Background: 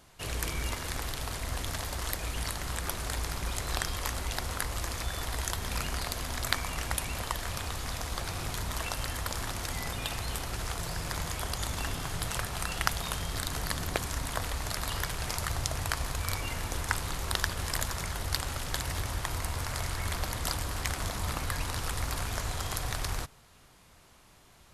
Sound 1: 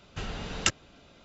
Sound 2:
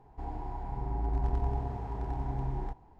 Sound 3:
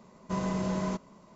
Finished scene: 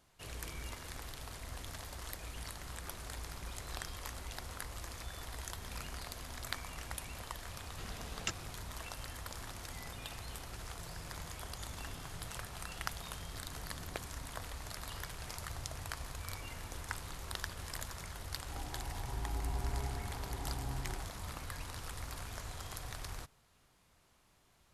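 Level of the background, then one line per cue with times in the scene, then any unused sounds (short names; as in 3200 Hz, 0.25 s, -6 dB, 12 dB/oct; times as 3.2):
background -11 dB
7.61 add 1 -12.5 dB
18.31 add 2 -7.5 dB
not used: 3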